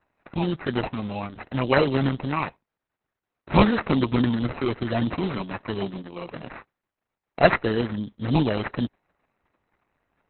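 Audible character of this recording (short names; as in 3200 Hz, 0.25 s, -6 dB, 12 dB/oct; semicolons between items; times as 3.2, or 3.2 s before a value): aliases and images of a low sample rate 3400 Hz, jitter 0%; Opus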